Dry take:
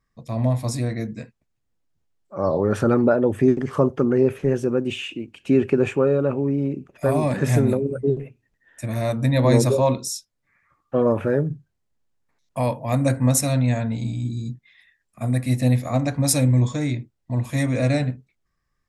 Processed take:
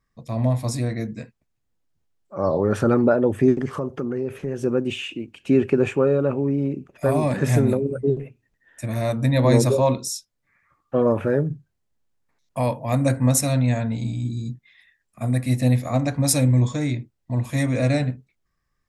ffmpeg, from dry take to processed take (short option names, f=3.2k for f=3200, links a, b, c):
-filter_complex "[0:a]asettb=1/sr,asplit=3[a][b][c];[a]atrim=end=3.694[d];[b]atrim=start=3.69:end=4.62,asetpts=PTS-STARTPTS,afade=t=in:d=0.004:c=qsin,afade=t=out:st=0.926:d=0.004:c=qsin,acompressor=threshold=-26dB:ratio=2.5:attack=3.2:release=140:knee=1:detection=peak[e];[c]atrim=start=4.616[f];[d][e]acrossfade=d=0.004:c1=hsin:c2=qsin[g];[g][f]acrossfade=d=0.004:c1=qsin:c2=hsin"